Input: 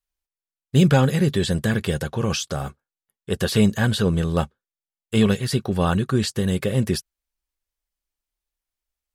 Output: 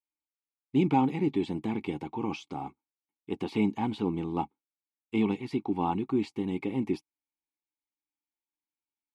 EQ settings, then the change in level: dynamic EQ 720 Hz, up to +7 dB, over -37 dBFS, Q 1.1; vowel filter u; +4.5 dB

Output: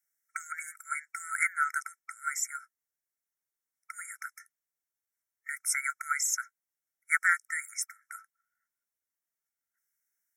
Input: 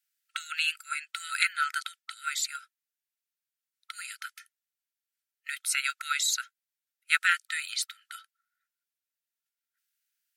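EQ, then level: brick-wall FIR band-stop 2300–5200 Hz; 0.0 dB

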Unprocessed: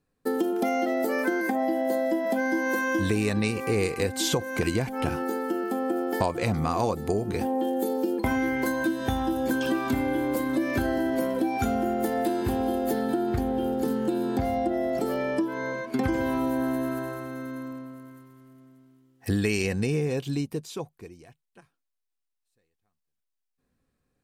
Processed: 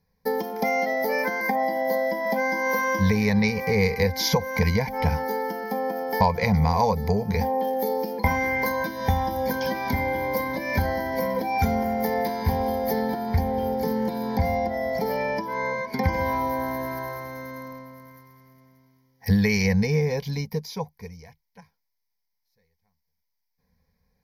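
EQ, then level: ripple EQ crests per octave 0.82, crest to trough 12 dB; dynamic EQ 8900 Hz, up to -5 dB, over -49 dBFS, Q 0.72; fixed phaser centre 1800 Hz, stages 8; +7.0 dB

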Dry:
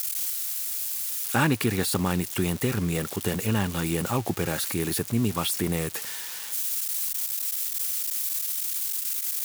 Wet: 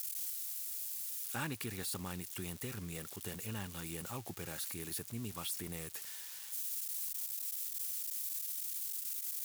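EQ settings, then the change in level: pre-emphasis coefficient 0.97; tilt -4 dB/oct; 0.0 dB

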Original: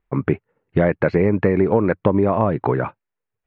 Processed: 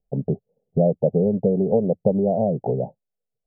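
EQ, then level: steep low-pass 790 Hz 72 dB/oct; fixed phaser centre 320 Hz, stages 6; 0.0 dB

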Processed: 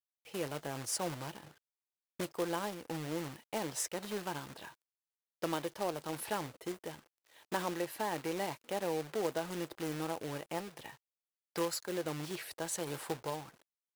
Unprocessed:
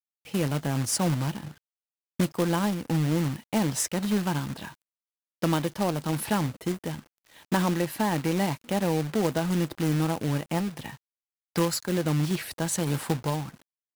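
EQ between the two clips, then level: resonant low shelf 300 Hz -8.5 dB, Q 1.5; -8.5 dB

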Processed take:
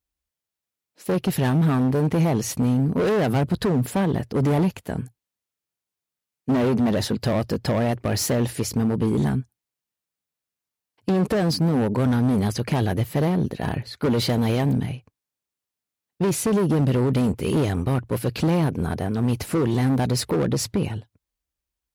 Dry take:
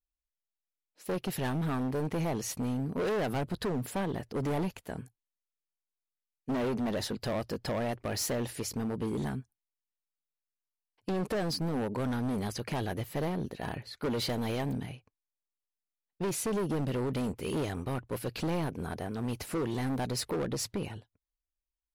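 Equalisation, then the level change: HPF 71 Hz; low shelf 240 Hz +8.5 dB; +7.5 dB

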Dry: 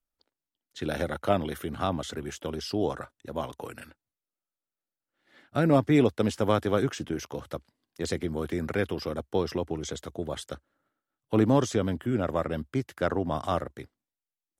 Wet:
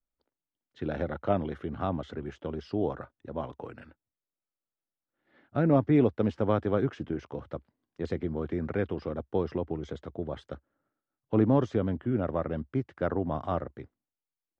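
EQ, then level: tape spacing loss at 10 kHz 36 dB; 0.0 dB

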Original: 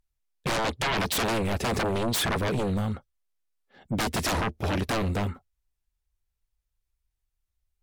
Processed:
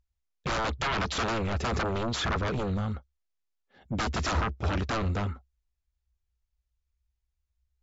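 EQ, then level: bell 65 Hz +14 dB 0.55 oct; dynamic EQ 1300 Hz, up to +7 dB, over -47 dBFS, Q 3.4; brick-wall FIR low-pass 7500 Hz; -4.0 dB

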